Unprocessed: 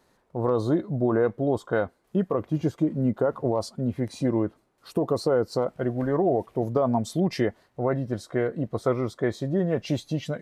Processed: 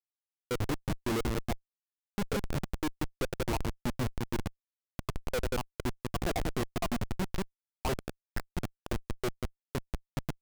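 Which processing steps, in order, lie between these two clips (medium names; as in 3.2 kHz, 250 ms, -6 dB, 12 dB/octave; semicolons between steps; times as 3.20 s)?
random holes in the spectrogram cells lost 77%; two-band feedback delay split 460 Hz, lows 180 ms, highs 91 ms, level -11 dB; Schmitt trigger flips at -30 dBFS; trim +2 dB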